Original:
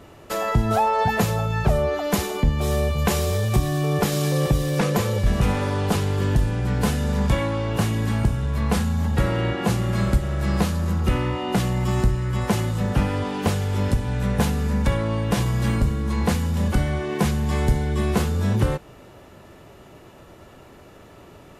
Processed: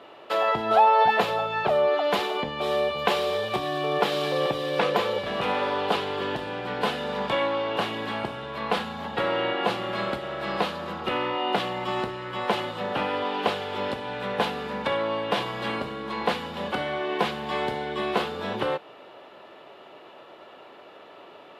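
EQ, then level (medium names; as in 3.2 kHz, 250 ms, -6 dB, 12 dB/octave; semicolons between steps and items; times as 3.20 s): high-pass 560 Hz 12 dB/octave; distance through air 480 m; resonant high shelf 2.6 kHz +7 dB, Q 1.5; +6.5 dB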